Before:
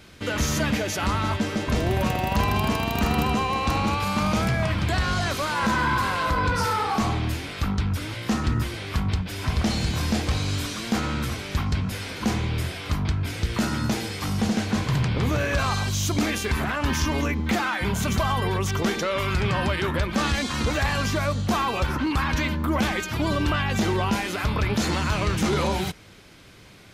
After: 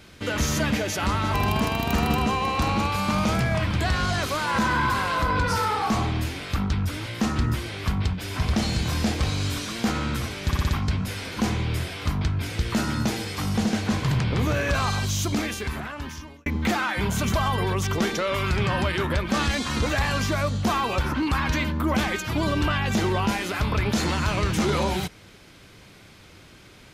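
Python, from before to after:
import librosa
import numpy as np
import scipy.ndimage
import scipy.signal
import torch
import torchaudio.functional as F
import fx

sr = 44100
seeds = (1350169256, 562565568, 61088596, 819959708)

y = fx.edit(x, sr, fx.cut(start_s=1.34, length_s=1.08),
    fx.stutter(start_s=11.53, slice_s=0.06, count=5),
    fx.fade_out_span(start_s=15.92, length_s=1.38), tone=tone)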